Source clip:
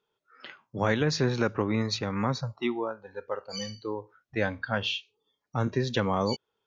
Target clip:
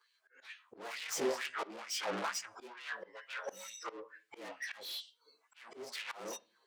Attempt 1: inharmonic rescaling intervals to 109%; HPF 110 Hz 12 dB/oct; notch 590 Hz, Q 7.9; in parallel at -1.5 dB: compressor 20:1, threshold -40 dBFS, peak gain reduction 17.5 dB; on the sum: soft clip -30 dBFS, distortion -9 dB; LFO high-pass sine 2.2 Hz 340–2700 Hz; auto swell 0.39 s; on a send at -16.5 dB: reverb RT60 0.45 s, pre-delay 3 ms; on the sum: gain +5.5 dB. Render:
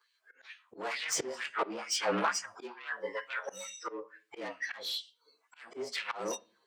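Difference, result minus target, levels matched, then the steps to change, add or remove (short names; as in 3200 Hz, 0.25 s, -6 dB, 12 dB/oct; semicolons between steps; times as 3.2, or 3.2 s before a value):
soft clip: distortion -6 dB
change: soft clip -40.5 dBFS, distortion -4 dB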